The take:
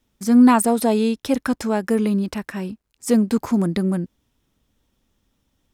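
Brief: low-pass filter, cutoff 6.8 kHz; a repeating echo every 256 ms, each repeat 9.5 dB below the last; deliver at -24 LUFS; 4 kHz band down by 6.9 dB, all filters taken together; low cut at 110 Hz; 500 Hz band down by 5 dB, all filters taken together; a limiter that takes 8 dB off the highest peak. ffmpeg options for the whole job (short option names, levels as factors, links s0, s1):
-af "highpass=110,lowpass=6800,equalizer=f=500:t=o:g=-6,equalizer=f=4000:t=o:g=-8.5,alimiter=limit=0.211:level=0:latency=1,aecho=1:1:256|512|768|1024:0.335|0.111|0.0365|0.012,volume=0.891"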